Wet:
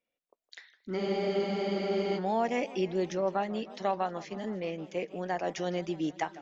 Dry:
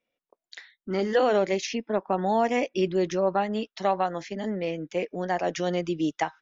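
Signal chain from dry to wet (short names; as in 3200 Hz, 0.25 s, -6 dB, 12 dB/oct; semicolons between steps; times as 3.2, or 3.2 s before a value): spectral freeze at 0.99, 1.19 s; warbling echo 0.157 s, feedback 72%, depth 208 cents, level -18 dB; gain -5.5 dB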